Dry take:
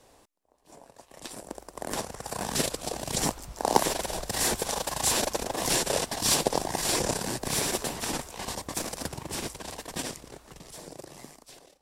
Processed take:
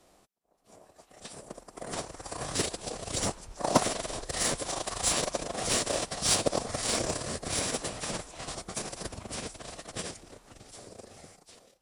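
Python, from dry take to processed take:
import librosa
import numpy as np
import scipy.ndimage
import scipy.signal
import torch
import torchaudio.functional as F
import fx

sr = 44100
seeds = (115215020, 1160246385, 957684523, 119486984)

y = fx.pitch_keep_formants(x, sr, semitones=-7.0)
y = fx.cheby_harmonics(y, sr, harmonics=(7,), levels_db=(-26,), full_scale_db=-8.5)
y = F.gain(torch.from_numpy(y), 1.5).numpy()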